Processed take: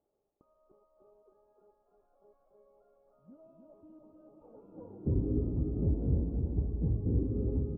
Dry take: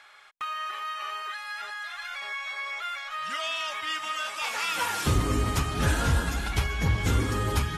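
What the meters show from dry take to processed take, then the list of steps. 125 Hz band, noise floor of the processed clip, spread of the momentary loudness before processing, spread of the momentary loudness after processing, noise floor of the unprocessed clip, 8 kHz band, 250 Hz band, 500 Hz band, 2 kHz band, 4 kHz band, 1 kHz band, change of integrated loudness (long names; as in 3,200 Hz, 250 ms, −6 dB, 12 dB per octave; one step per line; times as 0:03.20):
−4.5 dB, −79 dBFS, 9 LU, 4 LU, −48 dBFS, below −40 dB, −2.0 dB, −5.5 dB, below −40 dB, below −40 dB, −33.0 dB, −3.5 dB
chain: inverse Chebyshev low-pass filter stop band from 1,800 Hz, stop band 70 dB
low-shelf EQ 200 Hz −7 dB
repeating echo 304 ms, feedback 42%, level −5 dB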